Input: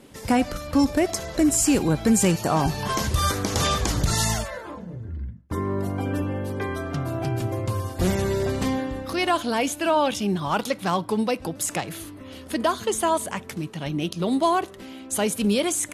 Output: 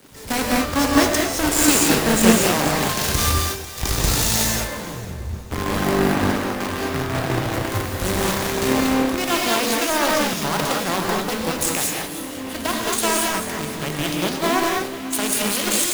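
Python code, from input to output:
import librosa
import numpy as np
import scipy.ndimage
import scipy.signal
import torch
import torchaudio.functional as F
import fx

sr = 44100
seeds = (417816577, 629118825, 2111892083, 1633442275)

p1 = fx.lowpass(x, sr, hz=1800.0, slope=24, at=(5.91, 7.45))
p2 = fx.over_compress(p1, sr, threshold_db=-27.0, ratio=-1.0)
p3 = p1 + F.gain(torch.from_numpy(p2), 2.0).numpy()
p4 = fx.stiff_resonator(p3, sr, f0_hz=380.0, decay_s=0.47, stiffness=0.002, at=(3.31, 3.76), fade=0.02)
p5 = fx.quant_companded(p4, sr, bits=2)
p6 = 10.0 ** (-6.0 / 20.0) * np.tanh(p5 / 10.0 ** (-6.0 / 20.0))
p7 = fx.echo_split(p6, sr, split_hz=340.0, low_ms=269, high_ms=496, feedback_pct=52, wet_db=-12.5)
p8 = fx.rev_gated(p7, sr, seeds[0], gate_ms=250, shape='rising', drr_db=-2.0)
p9 = fx.band_widen(p8, sr, depth_pct=70)
y = F.gain(torch.from_numpy(p9), -5.0).numpy()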